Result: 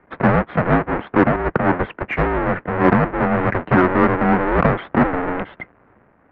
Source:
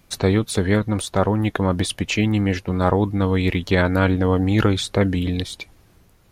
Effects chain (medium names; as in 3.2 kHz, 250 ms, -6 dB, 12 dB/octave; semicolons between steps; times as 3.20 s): square wave that keeps the level; mistuned SSB -260 Hz 410–2200 Hz; in parallel at -6.5 dB: saturation -14.5 dBFS, distortion -14 dB; 1.36–2.60 s: on the sum: three bands expanded up and down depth 70%; trim +2 dB